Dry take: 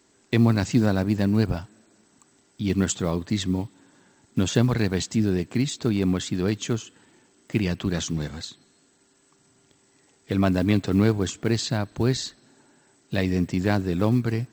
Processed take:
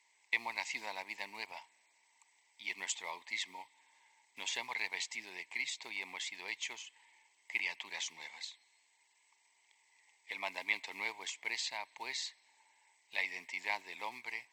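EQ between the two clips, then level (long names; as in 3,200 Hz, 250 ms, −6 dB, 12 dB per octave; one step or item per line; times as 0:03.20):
pair of resonant band-passes 1,400 Hz, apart 1.2 octaves
first difference
+15.5 dB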